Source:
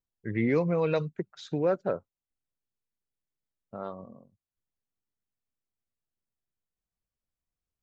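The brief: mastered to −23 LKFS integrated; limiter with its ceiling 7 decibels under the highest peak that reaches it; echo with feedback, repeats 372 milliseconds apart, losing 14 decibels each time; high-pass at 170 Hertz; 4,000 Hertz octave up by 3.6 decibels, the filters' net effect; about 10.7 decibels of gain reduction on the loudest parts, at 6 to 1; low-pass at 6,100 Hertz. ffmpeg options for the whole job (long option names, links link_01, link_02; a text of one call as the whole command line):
ffmpeg -i in.wav -af "highpass=170,lowpass=6100,equalizer=frequency=4000:width_type=o:gain=4.5,acompressor=threshold=-33dB:ratio=6,alimiter=level_in=6dB:limit=-24dB:level=0:latency=1,volume=-6dB,aecho=1:1:372|744:0.2|0.0399,volume=18.5dB" out.wav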